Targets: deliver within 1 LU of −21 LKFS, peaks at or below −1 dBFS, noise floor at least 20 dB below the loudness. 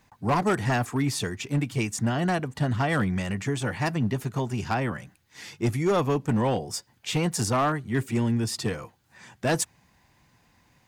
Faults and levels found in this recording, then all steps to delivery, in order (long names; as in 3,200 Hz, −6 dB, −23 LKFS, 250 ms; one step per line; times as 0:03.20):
share of clipped samples 1.4%; peaks flattened at −18.0 dBFS; integrated loudness −27.0 LKFS; sample peak −18.0 dBFS; target loudness −21.0 LKFS
→ clipped peaks rebuilt −18 dBFS
level +6 dB